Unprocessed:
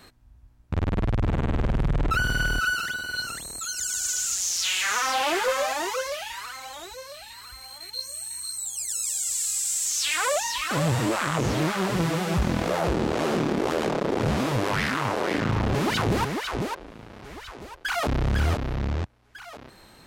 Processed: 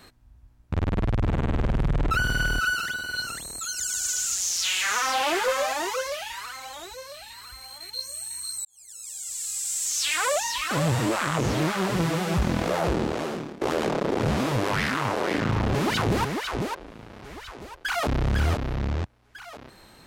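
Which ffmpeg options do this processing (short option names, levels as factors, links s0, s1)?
-filter_complex "[0:a]asplit=3[s0][s1][s2];[s0]atrim=end=8.65,asetpts=PTS-STARTPTS,afade=t=out:st=8.646:d=0.004:c=hsin[s3];[s1]atrim=start=8.65:end=13.61,asetpts=PTS-STARTPTS,afade=t=in:d=1.38,afade=t=out:st=4.3:d=0.66:silence=0.0794328[s4];[s2]atrim=start=13.61,asetpts=PTS-STARTPTS,afade=t=in:d=0.004:c=hsin:silence=0.0794328[s5];[s3][s4][s5]concat=n=3:v=0:a=1"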